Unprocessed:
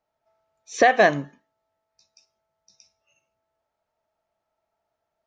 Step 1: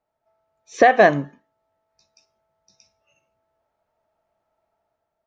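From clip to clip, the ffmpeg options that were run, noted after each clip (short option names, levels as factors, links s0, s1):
-af "highshelf=f=2700:g=-9.5,dynaudnorm=f=180:g=7:m=1.78,volume=1.19"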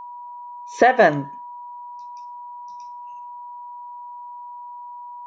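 -af "aeval=exprs='val(0)+0.0224*sin(2*PI*970*n/s)':c=same,volume=0.891"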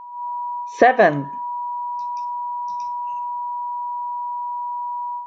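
-af "lowpass=f=3900:p=1,dynaudnorm=f=120:g=3:m=3.76,volume=0.891"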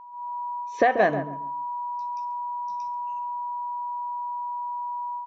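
-filter_complex "[0:a]asplit=2[s0][s1];[s1]adelay=138,lowpass=f=1100:p=1,volume=0.398,asplit=2[s2][s3];[s3]adelay=138,lowpass=f=1100:p=1,volume=0.27,asplit=2[s4][s5];[s5]adelay=138,lowpass=f=1100:p=1,volume=0.27[s6];[s0][s2][s4][s6]amix=inputs=4:normalize=0,volume=0.447"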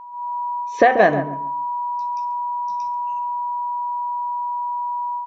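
-af "bandreject=f=127.5:t=h:w=4,bandreject=f=255:t=h:w=4,bandreject=f=382.5:t=h:w=4,bandreject=f=510:t=h:w=4,bandreject=f=637.5:t=h:w=4,bandreject=f=765:t=h:w=4,bandreject=f=892.5:t=h:w=4,bandreject=f=1020:t=h:w=4,bandreject=f=1147.5:t=h:w=4,bandreject=f=1275:t=h:w=4,bandreject=f=1402.5:t=h:w=4,bandreject=f=1530:t=h:w=4,bandreject=f=1657.5:t=h:w=4,bandreject=f=1785:t=h:w=4,bandreject=f=1912.5:t=h:w=4,bandreject=f=2040:t=h:w=4,bandreject=f=2167.5:t=h:w=4,bandreject=f=2295:t=h:w=4,bandreject=f=2422.5:t=h:w=4,bandreject=f=2550:t=h:w=4,volume=2.11"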